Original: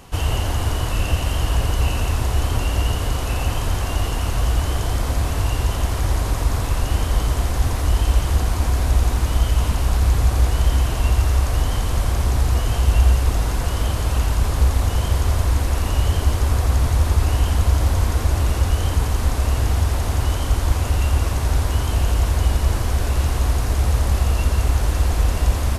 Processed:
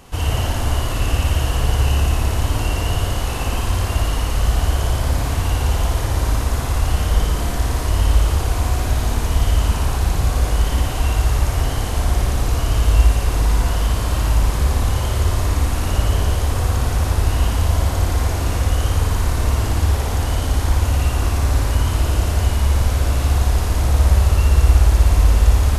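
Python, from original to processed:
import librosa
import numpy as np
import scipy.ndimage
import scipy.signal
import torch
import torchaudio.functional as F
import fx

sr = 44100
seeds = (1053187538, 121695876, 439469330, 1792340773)

y = fx.room_flutter(x, sr, wall_m=9.8, rt60_s=1.1)
y = y * 10.0 ** (-1.0 / 20.0)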